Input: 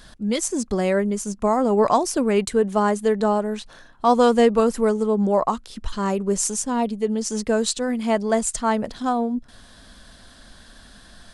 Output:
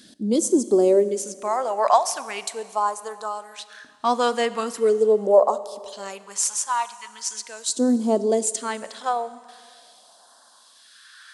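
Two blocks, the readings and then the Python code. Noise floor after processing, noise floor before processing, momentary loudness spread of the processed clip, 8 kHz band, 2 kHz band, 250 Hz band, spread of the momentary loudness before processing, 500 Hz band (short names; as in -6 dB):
-54 dBFS, -49 dBFS, 14 LU, +1.0 dB, -3.0 dB, -4.5 dB, 8 LU, -0.5 dB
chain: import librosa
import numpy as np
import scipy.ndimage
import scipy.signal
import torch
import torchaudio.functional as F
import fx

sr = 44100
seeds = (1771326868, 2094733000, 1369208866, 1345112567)

y = fx.phaser_stages(x, sr, stages=2, low_hz=320.0, high_hz=2200.0, hz=0.41, feedback_pct=25)
y = fx.filter_lfo_highpass(y, sr, shape='saw_up', hz=0.26, low_hz=260.0, high_hz=1600.0, q=2.9)
y = fx.rev_schroeder(y, sr, rt60_s=2.1, comb_ms=29, drr_db=15.0)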